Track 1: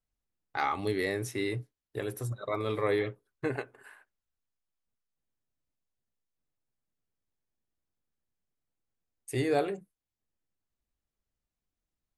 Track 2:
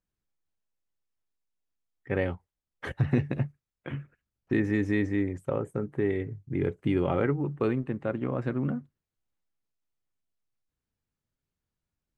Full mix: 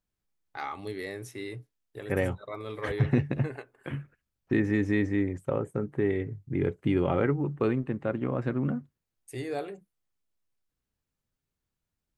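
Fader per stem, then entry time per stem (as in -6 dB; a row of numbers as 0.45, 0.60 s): -6.0, +0.5 dB; 0.00, 0.00 s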